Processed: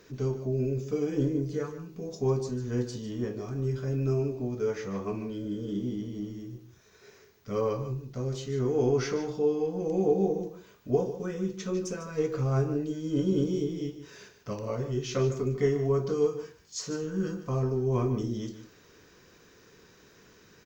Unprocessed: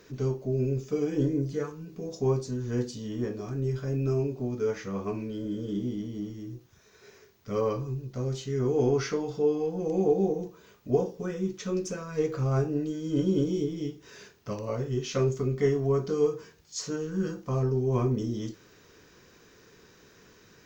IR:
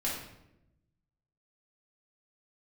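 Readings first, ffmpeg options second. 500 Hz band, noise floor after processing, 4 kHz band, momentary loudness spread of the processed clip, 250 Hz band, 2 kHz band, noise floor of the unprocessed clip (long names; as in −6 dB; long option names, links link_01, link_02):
−0.5 dB, −58 dBFS, −0.5 dB, 11 LU, −1.0 dB, −0.5 dB, −58 dBFS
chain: -af "aecho=1:1:149:0.251,volume=-1dB"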